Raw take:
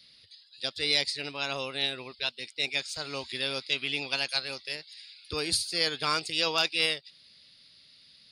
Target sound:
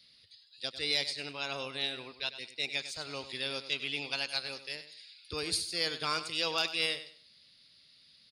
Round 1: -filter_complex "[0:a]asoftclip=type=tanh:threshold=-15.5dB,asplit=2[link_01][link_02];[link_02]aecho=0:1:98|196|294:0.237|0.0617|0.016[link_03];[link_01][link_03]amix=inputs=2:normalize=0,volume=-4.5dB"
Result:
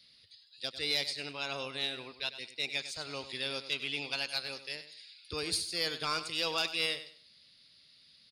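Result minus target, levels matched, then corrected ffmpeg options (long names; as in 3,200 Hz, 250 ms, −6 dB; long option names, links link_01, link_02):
soft clipping: distortion +13 dB
-filter_complex "[0:a]asoftclip=type=tanh:threshold=-8dB,asplit=2[link_01][link_02];[link_02]aecho=0:1:98|196|294:0.237|0.0617|0.016[link_03];[link_01][link_03]amix=inputs=2:normalize=0,volume=-4.5dB"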